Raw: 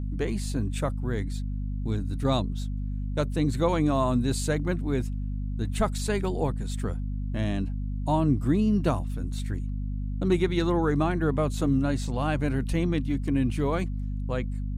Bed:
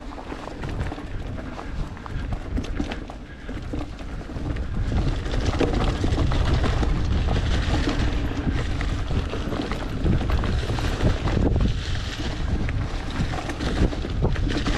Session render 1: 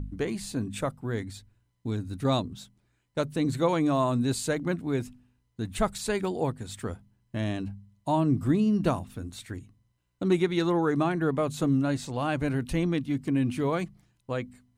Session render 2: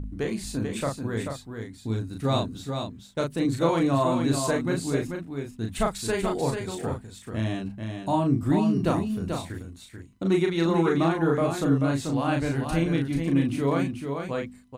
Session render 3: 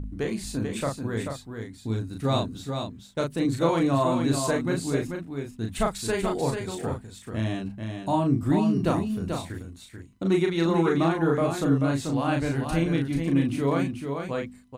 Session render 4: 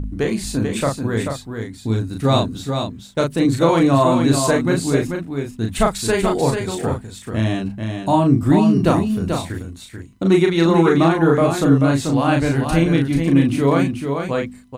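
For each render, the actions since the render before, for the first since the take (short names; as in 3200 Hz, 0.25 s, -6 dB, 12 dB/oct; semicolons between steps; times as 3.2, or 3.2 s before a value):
de-hum 50 Hz, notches 5
doubler 36 ms -3.5 dB; echo 0.437 s -6 dB
nothing audible
gain +8.5 dB; limiter -2 dBFS, peak gain reduction 2 dB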